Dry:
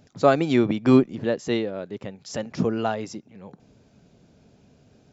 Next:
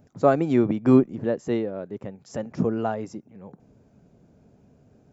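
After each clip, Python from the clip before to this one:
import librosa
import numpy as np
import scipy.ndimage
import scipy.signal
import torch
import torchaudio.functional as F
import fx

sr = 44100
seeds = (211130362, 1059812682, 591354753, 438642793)

y = fx.peak_eq(x, sr, hz=3900.0, db=-13.5, octaves=1.9)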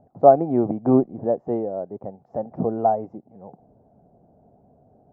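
y = fx.lowpass_res(x, sr, hz=740.0, q=4.9)
y = y * 10.0 ** (-2.5 / 20.0)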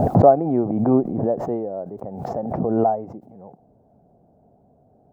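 y = fx.pre_swell(x, sr, db_per_s=37.0)
y = y * 10.0 ** (-1.0 / 20.0)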